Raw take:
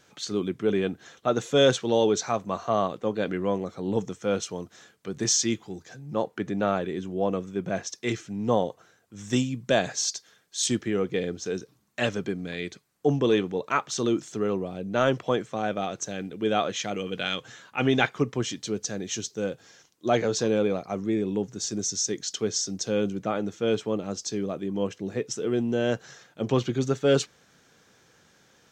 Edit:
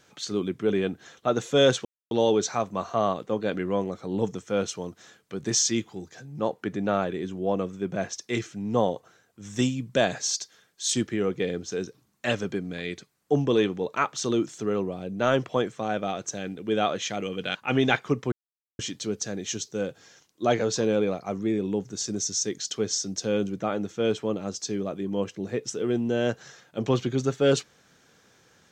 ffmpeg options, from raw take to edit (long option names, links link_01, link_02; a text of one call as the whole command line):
ffmpeg -i in.wav -filter_complex "[0:a]asplit=4[link_01][link_02][link_03][link_04];[link_01]atrim=end=1.85,asetpts=PTS-STARTPTS,afade=type=out:start_time=1.846:duration=0.004:curve=hsin,apad=pad_dur=0.26[link_05];[link_02]atrim=start=1.85:end=17.292,asetpts=PTS-STARTPTS,afade=type=in:duration=0.004:curve=hsin[link_06];[link_03]atrim=start=17.648:end=18.42,asetpts=PTS-STARTPTS,afade=type=out:start_time=0.768:duration=0.004:curve=hsin,apad=pad_dur=0.47[link_07];[link_04]atrim=start=18.42,asetpts=PTS-STARTPTS,afade=type=in:duration=0.004:curve=hsin[link_08];[link_05][link_06]concat=n=2:v=0:a=1[link_09];[link_07][link_08]concat=n=2:v=0:a=1[link_10];[link_09][link_10]acrossfade=duration=0.004:curve1=hsin:curve2=hsin" out.wav